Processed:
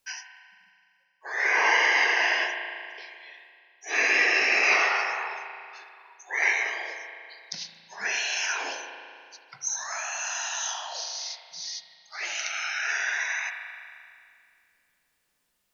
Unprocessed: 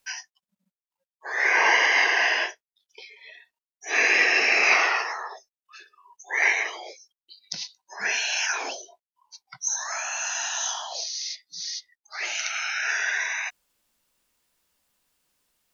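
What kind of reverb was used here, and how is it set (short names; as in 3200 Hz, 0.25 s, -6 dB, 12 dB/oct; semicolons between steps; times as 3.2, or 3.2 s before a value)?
spring tank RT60 2.3 s, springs 36 ms, chirp 45 ms, DRR 4.5 dB; gain -3 dB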